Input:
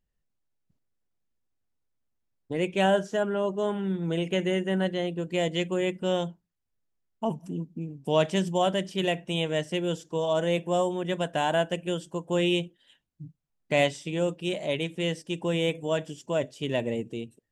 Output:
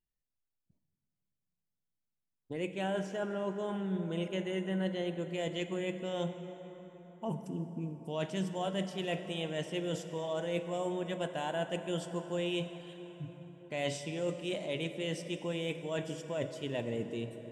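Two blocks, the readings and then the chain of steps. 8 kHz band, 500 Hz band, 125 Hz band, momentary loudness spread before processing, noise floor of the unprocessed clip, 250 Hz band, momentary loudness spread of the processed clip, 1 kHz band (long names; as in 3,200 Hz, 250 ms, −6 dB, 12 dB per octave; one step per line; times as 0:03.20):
−6.5 dB, −8.5 dB, −7.0 dB, 8 LU, −79 dBFS, −7.0 dB, 8 LU, −10.0 dB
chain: noise reduction from a noise print of the clip's start 12 dB
reversed playback
downward compressor, threshold −33 dBFS, peak gain reduction 15 dB
reversed playback
dense smooth reverb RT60 4.8 s, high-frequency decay 0.55×, DRR 8 dB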